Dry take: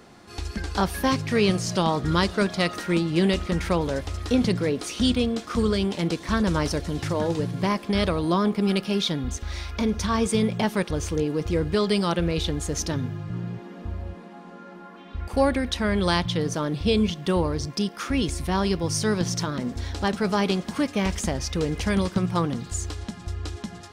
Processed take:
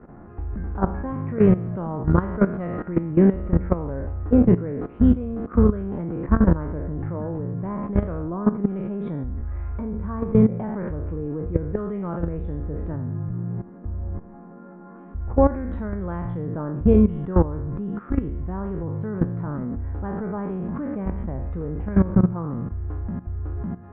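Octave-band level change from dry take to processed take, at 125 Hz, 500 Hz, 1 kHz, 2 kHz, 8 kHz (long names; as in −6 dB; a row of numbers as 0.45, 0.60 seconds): +3.5 dB, −0.5 dB, −4.5 dB, −11.0 dB, below −40 dB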